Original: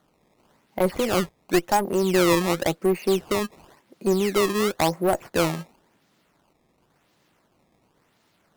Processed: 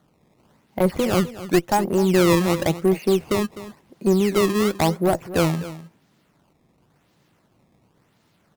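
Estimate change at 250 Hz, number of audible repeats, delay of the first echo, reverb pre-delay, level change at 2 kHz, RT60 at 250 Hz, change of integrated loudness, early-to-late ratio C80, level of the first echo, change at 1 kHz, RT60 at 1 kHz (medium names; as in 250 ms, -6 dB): +4.5 dB, 1, 254 ms, no reverb, 0.0 dB, no reverb, +2.5 dB, no reverb, -15.0 dB, +0.5 dB, no reverb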